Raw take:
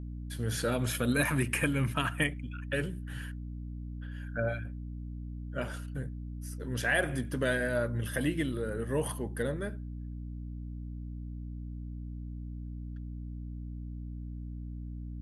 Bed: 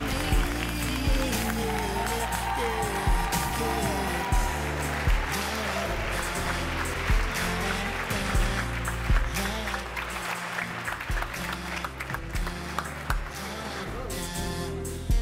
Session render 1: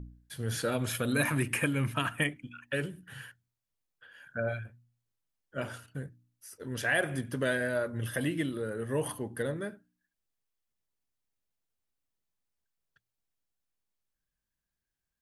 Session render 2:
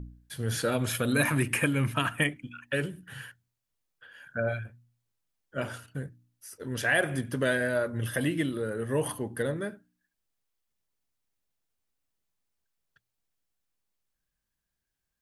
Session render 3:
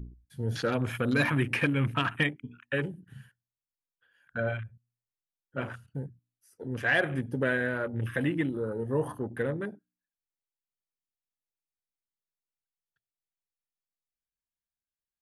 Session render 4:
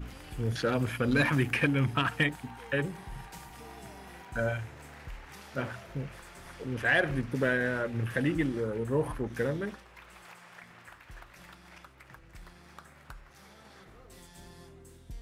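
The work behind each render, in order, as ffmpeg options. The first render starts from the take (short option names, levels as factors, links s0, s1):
-af "bandreject=f=60:t=h:w=4,bandreject=f=120:t=h:w=4,bandreject=f=180:t=h:w=4,bandreject=f=240:t=h:w=4,bandreject=f=300:t=h:w=4"
-af "volume=1.41"
-af "bandreject=f=610:w=12,afwtdn=0.0112"
-filter_complex "[1:a]volume=0.106[s0];[0:a][s0]amix=inputs=2:normalize=0"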